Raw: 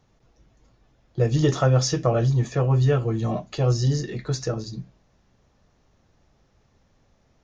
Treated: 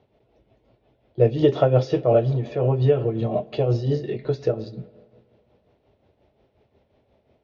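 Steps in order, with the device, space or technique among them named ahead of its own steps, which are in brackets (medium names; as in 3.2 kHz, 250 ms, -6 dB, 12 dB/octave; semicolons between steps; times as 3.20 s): combo amplifier with spring reverb and tremolo (spring tank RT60 2.1 s, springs 49/56 ms, chirp 65 ms, DRR 17.5 dB; tremolo 5.6 Hz, depth 57%; cabinet simulation 77–3600 Hz, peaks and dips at 160 Hz -7 dB, 410 Hz +7 dB, 610 Hz +7 dB, 1.2 kHz -9 dB, 1.7 kHz -7 dB); trim +3 dB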